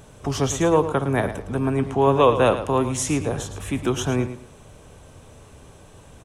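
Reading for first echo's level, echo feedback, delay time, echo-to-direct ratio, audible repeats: -11.5 dB, 24%, 110 ms, -11.0 dB, 2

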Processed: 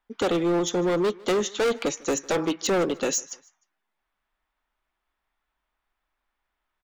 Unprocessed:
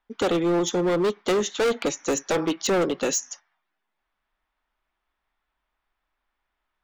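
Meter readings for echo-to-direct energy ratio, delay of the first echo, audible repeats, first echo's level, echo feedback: -23.5 dB, 152 ms, 2, -24.0 dB, 38%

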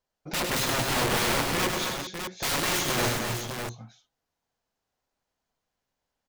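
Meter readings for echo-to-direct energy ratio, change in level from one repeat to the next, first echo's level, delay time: -0.5 dB, no regular repeats, -4.5 dB, 100 ms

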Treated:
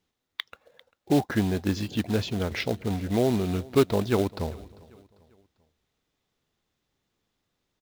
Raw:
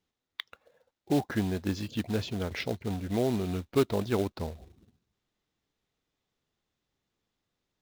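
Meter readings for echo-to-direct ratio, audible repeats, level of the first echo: -21.5 dB, 2, -22.5 dB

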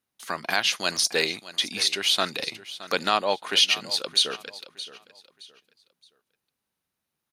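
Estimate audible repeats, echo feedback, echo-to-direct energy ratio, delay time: 2, 30%, -15.5 dB, 619 ms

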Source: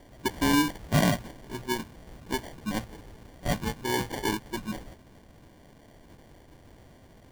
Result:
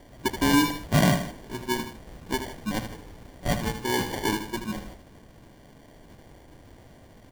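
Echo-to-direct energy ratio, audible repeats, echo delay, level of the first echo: -8.0 dB, 2, 78 ms, -9.0 dB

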